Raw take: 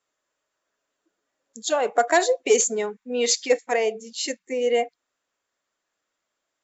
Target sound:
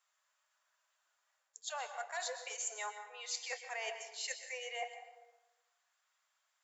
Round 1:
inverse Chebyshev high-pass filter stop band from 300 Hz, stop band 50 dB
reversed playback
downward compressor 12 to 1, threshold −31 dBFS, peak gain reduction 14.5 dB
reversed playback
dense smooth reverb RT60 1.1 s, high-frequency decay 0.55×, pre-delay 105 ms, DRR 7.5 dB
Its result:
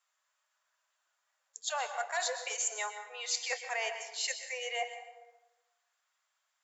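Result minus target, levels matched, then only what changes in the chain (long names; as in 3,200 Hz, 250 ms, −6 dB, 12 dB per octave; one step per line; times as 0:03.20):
downward compressor: peak gain reduction −7 dB
change: downward compressor 12 to 1, threshold −38.5 dBFS, peak gain reduction 21.5 dB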